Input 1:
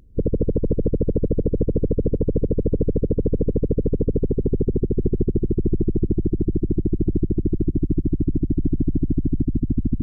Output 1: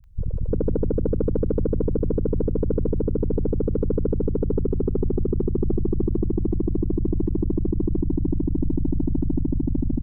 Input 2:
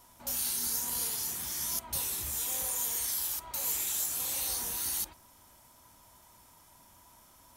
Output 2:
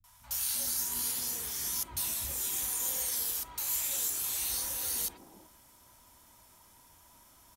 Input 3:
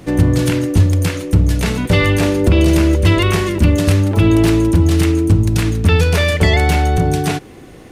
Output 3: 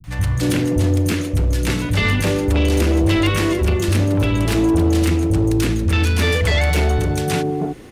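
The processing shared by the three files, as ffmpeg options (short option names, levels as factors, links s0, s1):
-filter_complex "[0:a]acrossover=split=280[s0][s1];[s0]volume=3.55,asoftclip=hard,volume=0.282[s2];[s2][s1]amix=inputs=2:normalize=0,acrossover=split=150|780[s3][s4][s5];[s5]adelay=40[s6];[s4]adelay=340[s7];[s3][s7][s6]amix=inputs=3:normalize=0,asoftclip=type=tanh:threshold=0.316"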